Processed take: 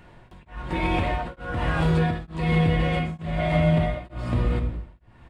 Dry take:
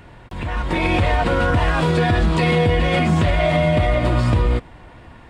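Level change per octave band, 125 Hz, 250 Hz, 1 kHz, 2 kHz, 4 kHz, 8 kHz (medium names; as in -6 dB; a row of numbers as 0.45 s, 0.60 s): -5.0 dB, -5.0 dB, -7.5 dB, -8.5 dB, -9.0 dB, under -10 dB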